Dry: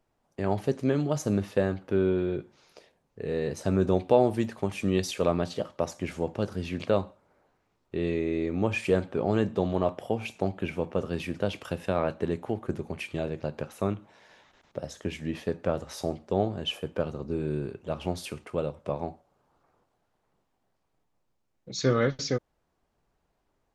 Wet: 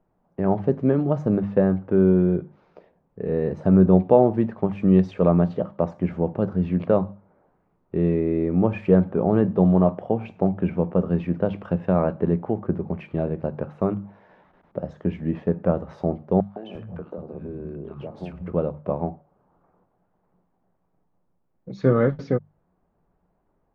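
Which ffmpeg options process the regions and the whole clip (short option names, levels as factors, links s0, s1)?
-filter_complex "[0:a]asettb=1/sr,asplit=3[s0][s1][s2];[s0]atrim=end=16.404[s3];[s1]atrim=start=16.4:end=18.52,asetpts=PTS-STARTPTS,afade=t=in:d=0.004:c=qsin,afade=t=out:st=2.116:d=0.004:c=qsin,acompressor=threshold=0.0224:ratio=10:attack=3.2:release=140:knee=1:detection=peak,acrossover=split=200|990[s4][s5][s6];[s5]adelay=160[s7];[s4]adelay=350[s8];[s8][s7][s6]amix=inputs=3:normalize=0,atrim=end_sample=93492[s9];[s2]atrim=start=18.516[s10];[s3][s9]acrossfade=d=0.004:c1=hsin:c2=qsin[s11];[s11][s10]acrossfade=d=0.004:c1=qsin:c2=hsin,lowpass=1200,equalizer=f=180:t=o:w=0.26:g=10.5,bandreject=f=50:t=h:w=6,bandreject=f=100:t=h:w=6,bandreject=f=150:t=h:w=6,bandreject=f=200:t=h:w=6,volume=1.88"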